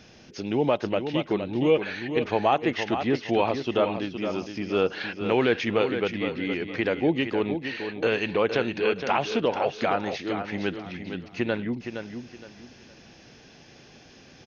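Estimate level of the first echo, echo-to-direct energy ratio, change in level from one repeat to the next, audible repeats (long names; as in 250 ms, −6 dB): −8.0 dB, −7.5 dB, −11.0 dB, 3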